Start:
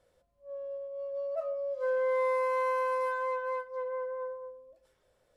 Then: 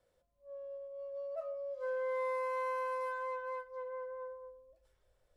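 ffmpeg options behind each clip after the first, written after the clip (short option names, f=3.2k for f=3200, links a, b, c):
-filter_complex "[0:a]asubboost=boost=5.5:cutoff=81,acrossover=split=310|670[a][b][c];[a]acompressor=threshold=-59dB:ratio=6[d];[d][b][c]amix=inputs=3:normalize=0,volume=-6dB"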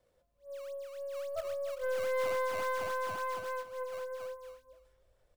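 -filter_complex "[0:a]asplit=2[a][b];[b]acrusher=samples=15:mix=1:aa=0.000001:lfo=1:lforange=24:lforate=3.6,volume=-6dB[c];[a][c]amix=inputs=2:normalize=0,aeval=exprs='0.0596*(cos(1*acos(clip(val(0)/0.0596,-1,1)))-cos(1*PI/2))+0.00596*(cos(4*acos(clip(val(0)/0.0596,-1,1)))-cos(4*PI/2))':c=same,aecho=1:1:300:0.188"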